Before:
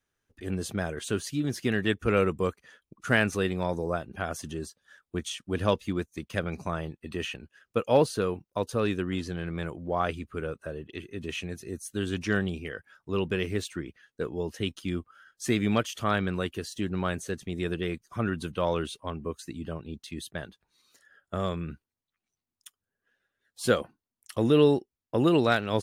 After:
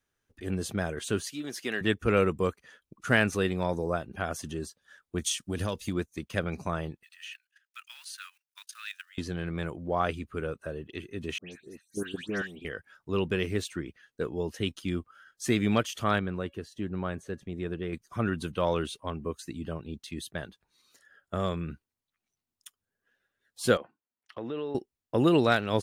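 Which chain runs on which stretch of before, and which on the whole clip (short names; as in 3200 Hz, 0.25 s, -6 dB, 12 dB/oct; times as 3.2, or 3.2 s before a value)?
1.25–1.81 HPF 230 Hz + low shelf 420 Hz -9 dB
5.18–5.95 compressor 4:1, threshold -28 dBFS + tone controls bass +3 dB, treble +10 dB
7.03–9.18 block floating point 7-bit + level quantiser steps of 14 dB + steep high-pass 1500 Hz
11.38–12.65 HPF 180 Hz + level quantiser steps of 15 dB + dispersion highs, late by 0.149 s, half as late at 2300 Hz
16.19–17.93 high shelf 2700 Hz -12 dB + resonator 560 Hz, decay 0.31 s, mix 30%
23.77–24.75 HPF 540 Hz 6 dB/oct + compressor 2.5:1, threshold -34 dBFS + air absorption 330 m
whole clip: dry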